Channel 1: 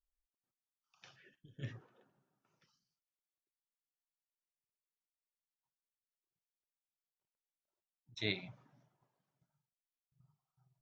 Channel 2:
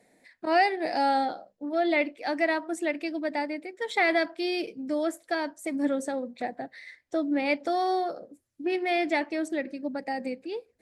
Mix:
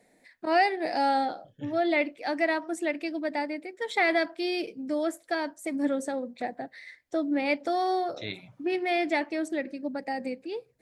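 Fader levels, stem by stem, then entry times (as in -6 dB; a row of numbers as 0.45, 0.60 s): 0.0, -0.5 dB; 0.00, 0.00 s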